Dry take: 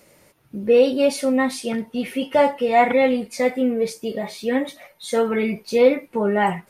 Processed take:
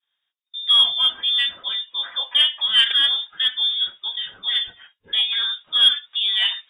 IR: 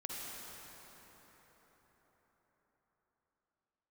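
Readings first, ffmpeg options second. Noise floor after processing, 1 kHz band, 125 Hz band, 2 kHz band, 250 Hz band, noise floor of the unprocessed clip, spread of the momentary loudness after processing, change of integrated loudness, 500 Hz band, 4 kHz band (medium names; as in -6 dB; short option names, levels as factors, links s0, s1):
-80 dBFS, -15.0 dB, no reading, -0.5 dB, under -30 dB, -56 dBFS, 11 LU, +2.5 dB, under -30 dB, +21.5 dB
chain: -af "lowpass=f=3200:t=q:w=0.5098,lowpass=f=3200:t=q:w=0.6013,lowpass=f=3200:t=q:w=0.9,lowpass=f=3200:t=q:w=2.563,afreqshift=-3800,aeval=exprs='0.631*(cos(1*acos(clip(val(0)/0.631,-1,1)))-cos(1*PI/2))+0.0355*(cos(3*acos(clip(val(0)/0.631,-1,1)))-cos(3*PI/2))':c=same,agate=range=0.0224:threshold=0.00708:ratio=3:detection=peak"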